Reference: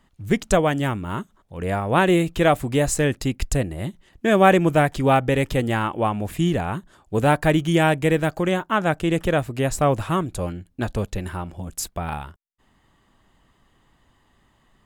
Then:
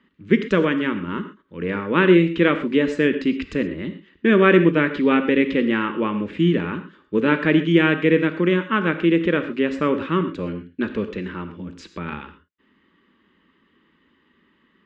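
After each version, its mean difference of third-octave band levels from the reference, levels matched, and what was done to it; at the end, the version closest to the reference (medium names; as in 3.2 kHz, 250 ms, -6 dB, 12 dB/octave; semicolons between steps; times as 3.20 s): 8.5 dB: Chebyshev band-pass 150–2700 Hz, order 2; distance through air 120 m; static phaser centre 300 Hz, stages 4; gated-style reverb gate 150 ms flat, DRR 9 dB; trim +6 dB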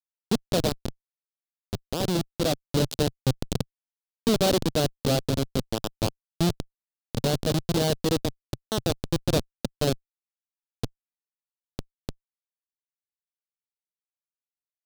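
16.0 dB: Schmitt trigger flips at -14.5 dBFS; bass shelf 260 Hz -12 dB; gain riding 2 s; graphic EQ 125/250/500/1000/2000/4000 Hz +9/+6/+4/-4/-9/+8 dB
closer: first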